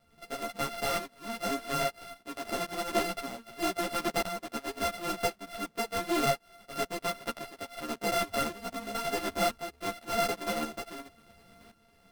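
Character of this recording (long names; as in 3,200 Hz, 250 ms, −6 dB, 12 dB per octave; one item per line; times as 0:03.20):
a buzz of ramps at a fixed pitch in blocks of 64 samples
tremolo saw up 0.94 Hz, depth 75%
aliases and images of a low sample rate 6,900 Hz, jitter 0%
a shimmering, thickened sound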